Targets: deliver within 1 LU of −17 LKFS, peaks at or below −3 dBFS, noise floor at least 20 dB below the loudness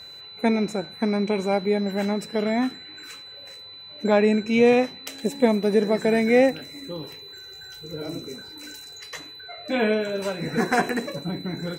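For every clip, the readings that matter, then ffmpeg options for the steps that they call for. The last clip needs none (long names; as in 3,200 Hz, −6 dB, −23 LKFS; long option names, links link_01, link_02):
interfering tone 4,000 Hz; level of the tone −40 dBFS; integrated loudness −23.0 LKFS; sample peak −5.0 dBFS; target loudness −17.0 LKFS
→ -af "bandreject=frequency=4000:width=30"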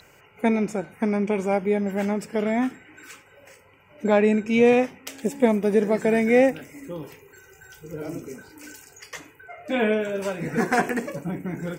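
interfering tone none found; integrated loudness −23.0 LKFS; sample peak −5.0 dBFS; target loudness −17.0 LKFS
→ -af "volume=6dB,alimiter=limit=-3dB:level=0:latency=1"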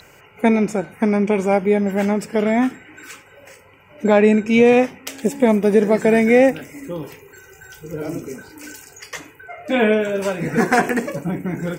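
integrated loudness −17.5 LKFS; sample peak −3.0 dBFS; background noise floor −48 dBFS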